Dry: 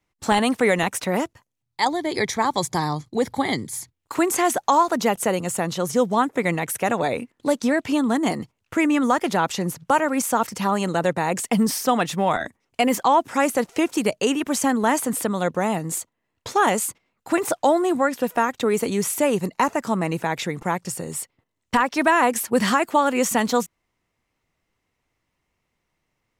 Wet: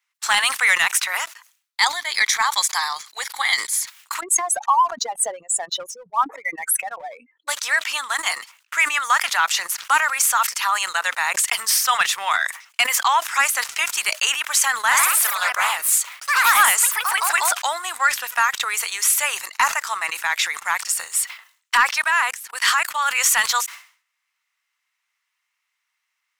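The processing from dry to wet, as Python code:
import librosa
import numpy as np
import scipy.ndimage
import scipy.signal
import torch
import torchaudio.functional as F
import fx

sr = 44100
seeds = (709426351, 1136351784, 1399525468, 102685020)

y = fx.spec_expand(x, sr, power=2.9, at=(4.19, 7.47), fade=0.02)
y = fx.echo_pitch(y, sr, ms=84, semitones=2, count=3, db_per_echo=-3.0, at=(14.76, 17.77))
y = fx.level_steps(y, sr, step_db=22, at=(21.96, 23.08), fade=0.02)
y = scipy.signal.sosfilt(scipy.signal.butter(4, 1200.0, 'highpass', fs=sr, output='sos'), y)
y = fx.leveller(y, sr, passes=1)
y = fx.sustainer(y, sr, db_per_s=130.0)
y = y * 10.0 ** (5.5 / 20.0)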